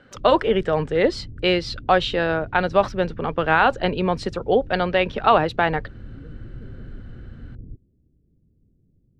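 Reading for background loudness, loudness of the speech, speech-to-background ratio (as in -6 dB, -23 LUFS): -41.0 LUFS, -21.0 LUFS, 20.0 dB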